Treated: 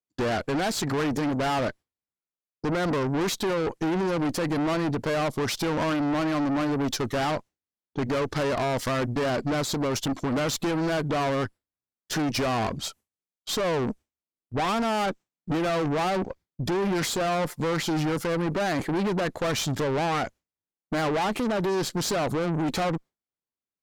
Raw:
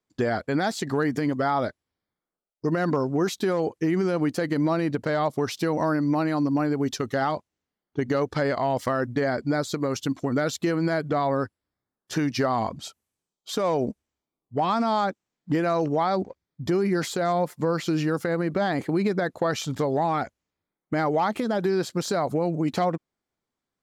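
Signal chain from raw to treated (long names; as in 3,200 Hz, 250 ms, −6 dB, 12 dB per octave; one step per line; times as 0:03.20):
tube saturation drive 32 dB, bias 0.55
noise gate with hold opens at −52 dBFS
level +8.5 dB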